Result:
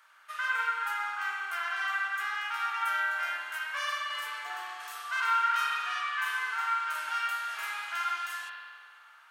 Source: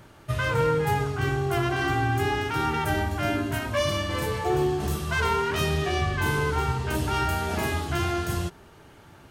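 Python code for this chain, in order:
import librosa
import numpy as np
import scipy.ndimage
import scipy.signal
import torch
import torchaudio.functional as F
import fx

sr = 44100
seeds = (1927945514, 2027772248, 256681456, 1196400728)

y = fx.ladder_highpass(x, sr, hz=1100.0, resonance_pct=45)
y = fx.rev_spring(y, sr, rt60_s=1.8, pass_ms=(42,), chirp_ms=30, drr_db=-2.0)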